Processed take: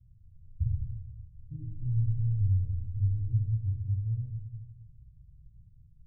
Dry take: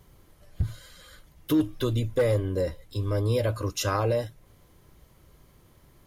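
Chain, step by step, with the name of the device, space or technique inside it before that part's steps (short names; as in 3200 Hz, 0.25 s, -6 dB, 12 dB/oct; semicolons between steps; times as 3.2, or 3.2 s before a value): club heard from the street (limiter -20 dBFS, peak gain reduction 4.5 dB; LPF 120 Hz 24 dB/oct; reverb RT60 1.1 s, pre-delay 3 ms, DRR -6 dB); gain -4 dB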